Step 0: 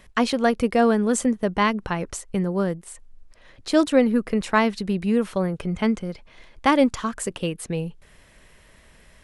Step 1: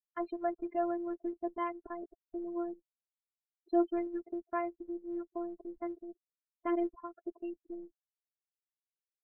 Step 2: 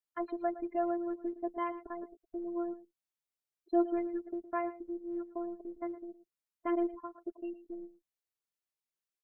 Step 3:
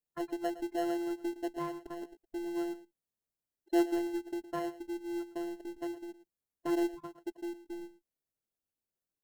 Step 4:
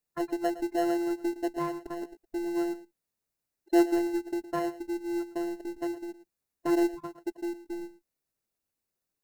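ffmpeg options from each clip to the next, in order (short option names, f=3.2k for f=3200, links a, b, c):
-af "bandpass=f=410:t=q:w=0.72:csg=0,afftfilt=real='re*gte(hypot(re,im),0.0251)':imag='im*gte(hypot(re,im),0.0251)':win_size=1024:overlap=0.75,afftfilt=real='hypot(re,im)*cos(PI*b)':imag='0':win_size=512:overlap=0.75,volume=-7.5dB"
-af "aecho=1:1:113:0.168"
-filter_complex "[0:a]equalizer=f=2.5k:w=0.38:g=-7.5,asplit=2[a][b];[b]acrusher=samples=37:mix=1:aa=0.000001,volume=-8dB[c];[a][c]amix=inputs=2:normalize=0"
-af "bandreject=f=3.2k:w=7.8,volume=5.5dB"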